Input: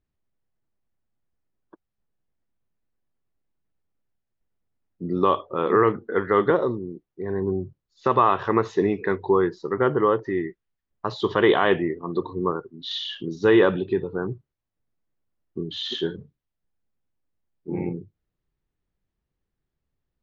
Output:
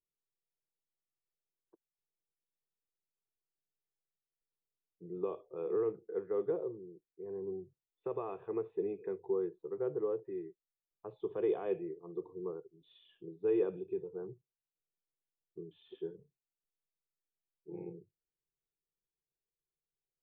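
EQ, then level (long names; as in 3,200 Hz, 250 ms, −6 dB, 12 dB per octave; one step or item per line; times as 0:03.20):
dynamic equaliser 990 Hz, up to −5 dB, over −36 dBFS, Q 2.7
formant resonators in series e
phaser with its sweep stopped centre 370 Hz, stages 8
0.0 dB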